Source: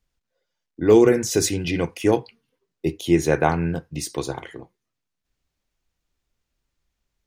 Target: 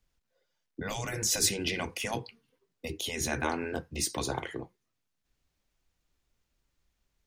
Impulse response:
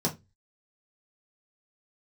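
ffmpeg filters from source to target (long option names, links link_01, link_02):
-filter_complex "[0:a]acrossover=split=200|3000[link_01][link_02][link_03];[link_02]acompressor=threshold=-24dB:ratio=4[link_04];[link_01][link_04][link_03]amix=inputs=3:normalize=0,afftfilt=real='re*lt(hypot(re,im),0.224)':imag='im*lt(hypot(re,im),0.224)':win_size=1024:overlap=0.75"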